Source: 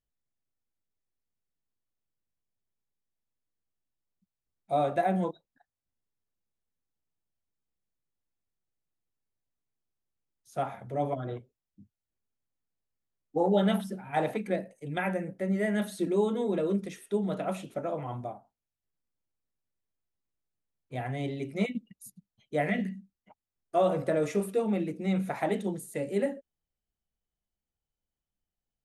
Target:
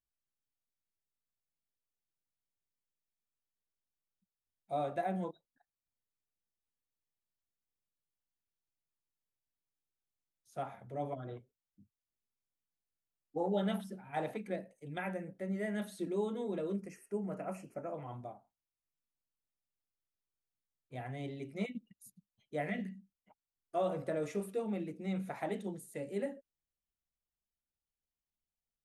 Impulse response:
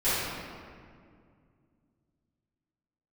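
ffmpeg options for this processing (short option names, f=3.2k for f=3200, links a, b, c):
-filter_complex "[0:a]asettb=1/sr,asplit=3[a][b][c];[a]atrim=end=16.804[d];[b]atrim=start=16.8:end=17.94,asetpts=PTS-STARTPTS,afade=t=in:d=0.004:c=qsin,afade=t=out:st=1.136:d=0.004:c=qsin,asuperstop=centerf=3600:order=4:qfactor=1.7[e];[c]atrim=start=17.936[f];[d][e]acrossfade=d=0.004:c1=hsin:c2=qsin[g];[g][f]acrossfade=d=0.004:c1=qsin:c2=hsin,volume=-8.5dB"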